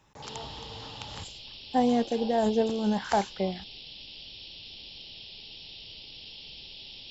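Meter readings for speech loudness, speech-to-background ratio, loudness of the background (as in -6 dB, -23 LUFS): -27.5 LUFS, 15.0 dB, -42.5 LUFS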